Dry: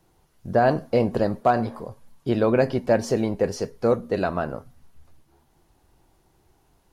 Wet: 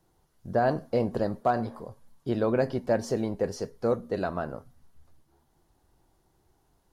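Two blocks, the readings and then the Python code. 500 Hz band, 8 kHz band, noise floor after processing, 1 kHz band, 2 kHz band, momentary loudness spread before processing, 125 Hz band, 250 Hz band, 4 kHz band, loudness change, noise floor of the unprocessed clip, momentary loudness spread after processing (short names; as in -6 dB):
-5.5 dB, -5.5 dB, -69 dBFS, -5.5 dB, -6.5 dB, 12 LU, -5.5 dB, -5.5 dB, -6.5 dB, -5.5 dB, -64 dBFS, 12 LU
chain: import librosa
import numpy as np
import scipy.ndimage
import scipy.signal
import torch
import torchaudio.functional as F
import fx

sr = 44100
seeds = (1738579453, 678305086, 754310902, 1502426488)

y = fx.peak_eq(x, sr, hz=2500.0, db=-5.0, octaves=0.51)
y = y * 10.0 ** (-5.5 / 20.0)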